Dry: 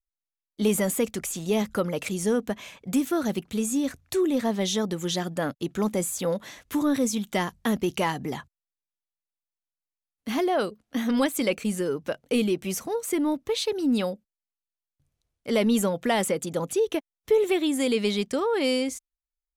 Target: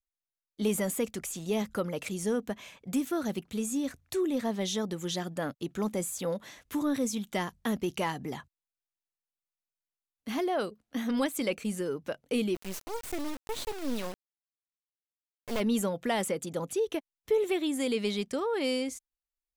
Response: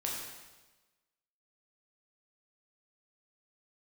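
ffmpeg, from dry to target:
-filter_complex "[0:a]asplit=3[link_01][link_02][link_03];[link_01]afade=type=out:start_time=12.54:duration=0.02[link_04];[link_02]acrusher=bits=3:dc=4:mix=0:aa=0.000001,afade=type=in:start_time=12.54:duration=0.02,afade=type=out:start_time=15.59:duration=0.02[link_05];[link_03]afade=type=in:start_time=15.59:duration=0.02[link_06];[link_04][link_05][link_06]amix=inputs=3:normalize=0,volume=-5.5dB"

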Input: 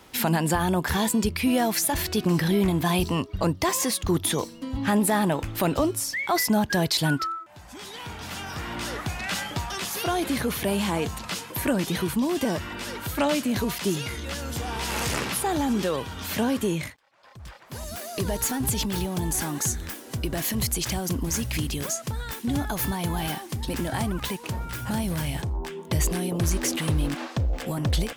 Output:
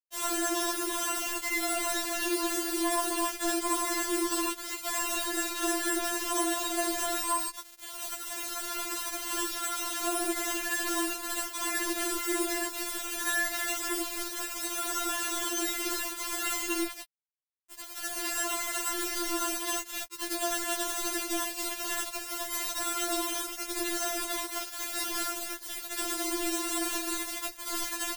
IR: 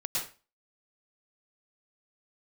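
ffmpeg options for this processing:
-filter_complex "[0:a]asplit=2[link_01][link_02];[link_02]acompressor=threshold=-35dB:ratio=20,volume=-0.5dB[link_03];[link_01][link_03]amix=inputs=2:normalize=0,acrusher=samples=19:mix=1:aa=0.000001,tiltshelf=frequency=1400:gain=-7.5,aecho=1:1:5.7:0.64,asplit=2[link_04][link_05];[link_05]adelay=258,lowpass=frequency=4400:poles=1,volume=-8.5dB,asplit=2[link_06][link_07];[link_07]adelay=258,lowpass=frequency=4400:poles=1,volume=0.49,asplit=2[link_08][link_09];[link_09]adelay=258,lowpass=frequency=4400:poles=1,volume=0.49,asplit=2[link_10][link_11];[link_11]adelay=258,lowpass=frequency=4400:poles=1,volume=0.49,asplit=2[link_12][link_13];[link_13]adelay=258,lowpass=frequency=4400:poles=1,volume=0.49,asplit=2[link_14][link_15];[link_15]adelay=258,lowpass=frequency=4400:poles=1,volume=0.49[link_16];[link_04][link_06][link_08][link_10][link_12][link_14][link_16]amix=inputs=7:normalize=0[link_17];[1:a]atrim=start_sample=2205,asetrate=66150,aresample=44100[link_18];[link_17][link_18]afir=irnorm=-1:irlink=0,aeval=exprs='0.211*(abs(mod(val(0)/0.211+3,4)-2)-1)':channel_layout=same,highpass=frequency=83:poles=1,acrusher=bits=3:mix=0:aa=0.000001,acrossover=split=250[link_19][link_20];[link_20]acompressor=threshold=-26dB:ratio=6[link_21];[link_19][link_21]amix=inputs=2:normalize=0,afftfilt=real='re*4*eq(mod(b,16),0)':imag='im*4*eq(mod(b,16),0)':win_size=2048:overlap=0.75"

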